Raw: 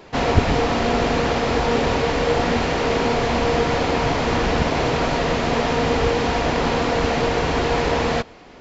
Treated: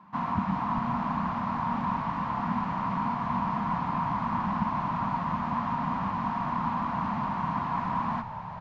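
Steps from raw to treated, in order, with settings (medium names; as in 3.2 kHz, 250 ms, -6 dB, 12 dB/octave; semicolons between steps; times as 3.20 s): two resonant band-passes 450 Hz, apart 2.4 oct; frequency-shifting echo 395 ms, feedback 37%, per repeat -60 Hz, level -9 dB; trim +2 dB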